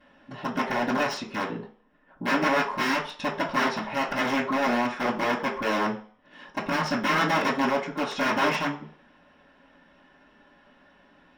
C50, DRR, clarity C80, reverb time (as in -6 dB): 9.0 dB, -14.5 dB, 13.5 dB, 0.45 s